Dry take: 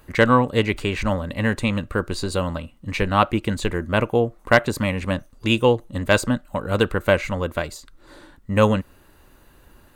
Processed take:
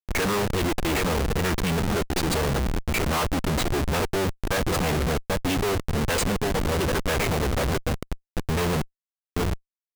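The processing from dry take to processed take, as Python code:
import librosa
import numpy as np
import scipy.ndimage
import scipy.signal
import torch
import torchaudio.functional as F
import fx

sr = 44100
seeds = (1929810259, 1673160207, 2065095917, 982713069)

y = fx.low_shelf(x, sr, hz=300.0, db=-3.0)
y = fx.echo_feedback(y, sr, ms=784, feedback_pct=58, wet_db=-16)
y = fx.dynamic_eq(y, sr, hz=8500.0, q=1.4, threshold_db=-49.0, ratio=4.0, max_db=3)
y = fx.pitch_keep_formants(y, sr, semitones=-3.5)
y = fx.schmitt(y, sr, flips_db=-30.0)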